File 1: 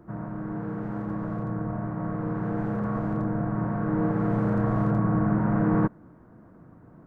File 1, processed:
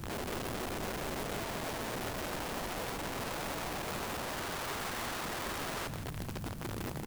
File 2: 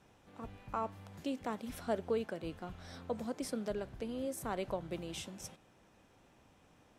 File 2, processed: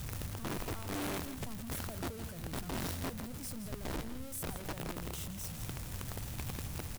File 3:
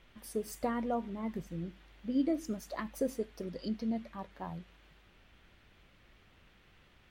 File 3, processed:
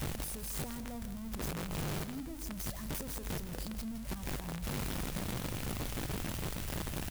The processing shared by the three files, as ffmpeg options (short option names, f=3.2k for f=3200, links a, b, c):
-filter_complex "[0:a]aeval=exprs='val(0)+0.5*0.0422*sgn(val(0))':c=same,firequalizer=gain_entry='entry(120,0);entry(180,-11);entry(360,-21);entry(11000,-7)':delay=0.05:min_phase=1,aeval=exprs='(mod(47.3*val(0)+1,2)-1)/47.3':c=same,asplit=2[a][b];[b]aecho=0:1:165:0.282[c];[a][c]amix=inputs=2:normalize=0"